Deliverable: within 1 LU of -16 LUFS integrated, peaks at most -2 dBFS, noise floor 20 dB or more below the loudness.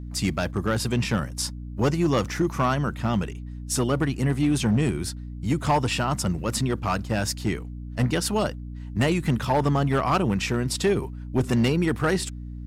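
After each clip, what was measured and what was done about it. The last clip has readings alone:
clipped samples 1.4%; clipping level -15.5 dBFS; hum 60 Hz; highest harmonic 300 Hz; hum level -33 dBFS; loudness -25.0 LUFS; peak level -15.5 dBFS; loudness target -16.0 LUFS
-> clip repair -15.5 dBFS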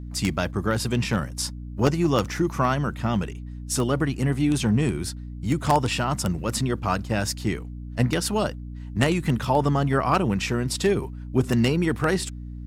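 clipped samples 0.0%; hum 60 Hz; highest harmonic 300 Hz; hum level -33 dBFS
-> de-hum 60 Hz, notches 5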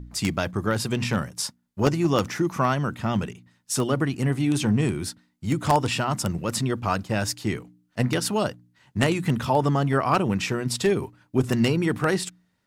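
hum not found; loudness -25.0 LUFS; peak level -6.0 dBFS; loudness target -16.0 LUFS
-> trim +9 dB; peak limiter -2 dBFS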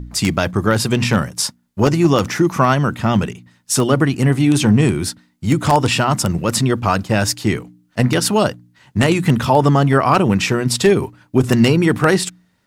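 loudness -16.5 LUFS; peak level -2.0 dBFS; noise floor -61 dBFS

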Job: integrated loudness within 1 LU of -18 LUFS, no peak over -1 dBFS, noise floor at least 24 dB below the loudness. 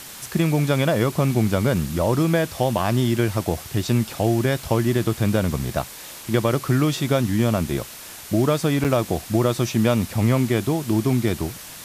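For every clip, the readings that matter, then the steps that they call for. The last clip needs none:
dropouts 1; longest dropout 7.7 ms; noise floor -39 dBFS; noise floor target -46 dBFS; loudness -21.5 LUFS; peak level -6.0 dBFS; loudness target -18.0 LUFS
-> interpolate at 8.84 s, 7.7 ms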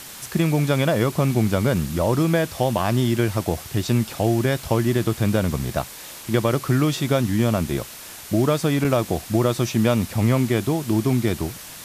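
dropouts 0; noise floor -39 dBFS; noise floor target -46 dBFS
-> noise reduction 7 dB, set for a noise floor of -39 dBFS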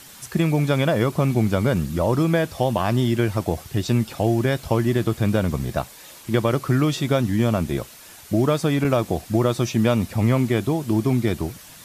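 noise floor -44 dBFS; noise floor target -46 dBFS
-> noise reduction 6 dB, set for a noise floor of -44 dBFS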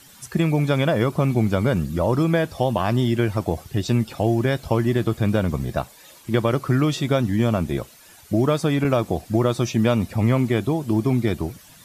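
noise floor -48 dBFS; loudness -22.0 LUFS; peak level -6.5 dBFS; loudness target -18.0 LUFS
-> trim +4 dB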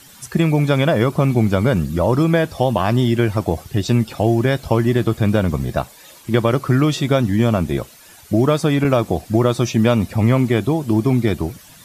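loudness -18.0 LUFS; peak level -2.5 dBFS; noise floor -44 dBFS

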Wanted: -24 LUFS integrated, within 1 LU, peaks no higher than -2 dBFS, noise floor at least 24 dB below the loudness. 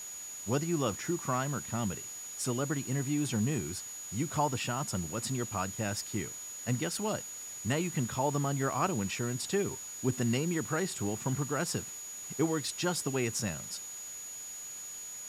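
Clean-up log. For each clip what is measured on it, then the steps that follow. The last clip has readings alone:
steady tone 6.8 kHz; tone level -41 dBFS; noise floor -43 dBFS; noise floor target -58 dBFS; loudness -33.5 LUFS; peak level -16.5 dBFS; loudness target -24.0 LUFS
-> band-stop 6.8 kHz, Q 30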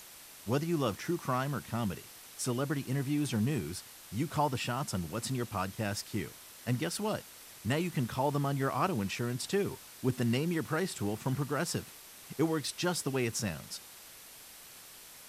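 steady tone not found; noise floor -52 dBFS; noise floor target -58 dBFS
-> noise print and reduce 6 dB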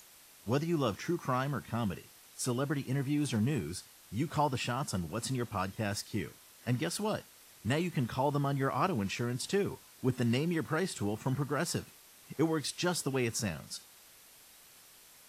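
noise floor -58 dBFS; loudness -34.0 LUFS; peak level -16.5 dBFS; loudness target -24.0 LUFS
-> trim +10 dB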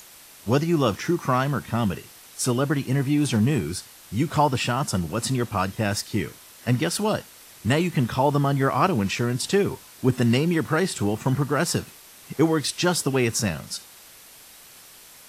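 loudness -24.0 LUFS; peak level -6.5 dBFS; noise floor -48 dBFS

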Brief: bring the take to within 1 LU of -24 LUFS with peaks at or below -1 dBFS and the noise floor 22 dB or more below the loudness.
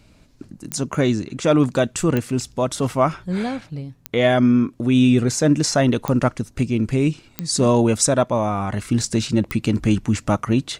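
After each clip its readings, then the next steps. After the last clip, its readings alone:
clicks found 6; loudness -20.0 LUFS; peak level -5.5 dBFS; loudness target -24.0 LUFS
-> de-click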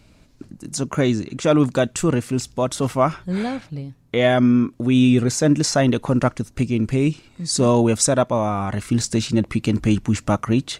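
clicks found 0; loudness -20.0 LUFS; peak level -5.5 dBFS; loudness target -24.0 LUFS
-> trim -4 dB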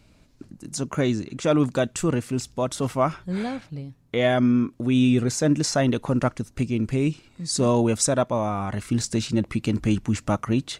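loudness -24.0 LUFS; peak level -9.5 dBFS; noise floor -57 dBFS

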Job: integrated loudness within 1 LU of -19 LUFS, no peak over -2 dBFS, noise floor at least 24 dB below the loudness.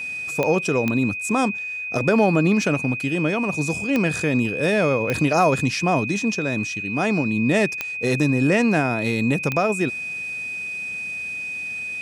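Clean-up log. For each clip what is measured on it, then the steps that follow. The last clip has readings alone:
clicks found 6; steady tone 2.5 kHz; tone level -27 dBFS; loudness -21.5 LUFS; peak level -5.5 dBFS; loudness target -19.0 LUFS
-> de-click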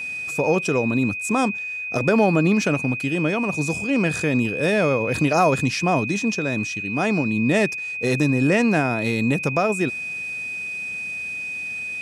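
clicks found 0; steady tone 2.5 kHz; tone level -27 dBFS
-> band-stop 2.5 kHz, Q 30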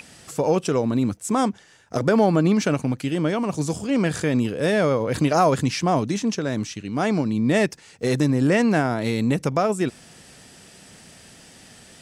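steady tone not found; loudness -22.0 LUFS; peak level -6.0 dBFS; loudness target -19.0 LUFS
-> trim +3 dB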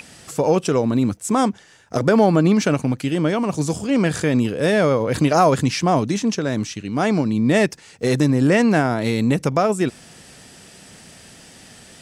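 loudness -19.0 LUFS; peak level -3.0 dBFS; noise floor -46 dBFS

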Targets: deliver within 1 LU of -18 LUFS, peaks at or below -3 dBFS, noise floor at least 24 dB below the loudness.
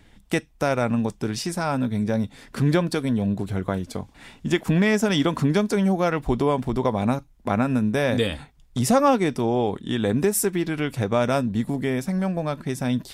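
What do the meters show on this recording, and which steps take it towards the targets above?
loudness -23.5 LUFS; peak level -7.0 dBFS; loudness target -18.0 LUFS
-> trim +5.5 dB; peak limiter -3 dBFS

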